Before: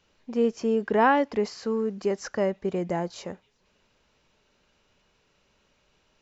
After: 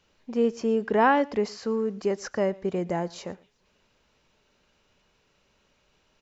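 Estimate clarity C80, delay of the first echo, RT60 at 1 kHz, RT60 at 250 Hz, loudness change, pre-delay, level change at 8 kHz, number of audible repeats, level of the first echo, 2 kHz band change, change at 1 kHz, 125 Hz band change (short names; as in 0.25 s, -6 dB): none, 0.115 s, none, none, 0.0 dB, none, n/a, 1, -23.5 dB, 0.0 dB, 0.0 dB, 0.0 dB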